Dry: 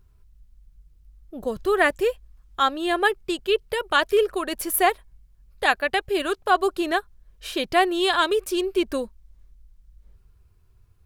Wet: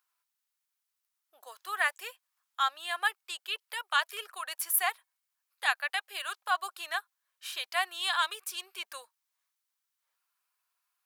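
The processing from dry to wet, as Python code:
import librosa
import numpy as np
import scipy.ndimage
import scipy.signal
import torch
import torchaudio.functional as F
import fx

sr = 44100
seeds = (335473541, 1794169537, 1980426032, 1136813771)

y = scipy.signal.sosfilt(scipy.signal.butter(4, 890.0, 'highpass', fs=sr, output='sos'), x)
y = fx.high_shelf(y, sr, hz=8200.0, db=6.0)
y = F.gain(torch.from_numpy(y), -6.5).numpy()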